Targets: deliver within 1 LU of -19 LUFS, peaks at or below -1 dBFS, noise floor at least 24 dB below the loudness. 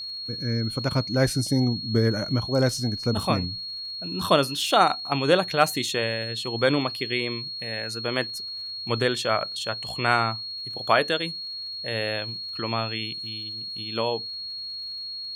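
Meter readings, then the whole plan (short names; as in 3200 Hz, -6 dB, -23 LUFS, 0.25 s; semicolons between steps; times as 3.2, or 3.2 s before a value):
ticks 57/s; steady tone 4300 Hz; tone level -32 dBFS; loudness -25.5 LUFS; peak -4.0 dBFS; loudness target -19.0 LUFS
-> de-click; notch 4300 Hz, Q 30; gain +6.5 dB; limiter -1 dBFS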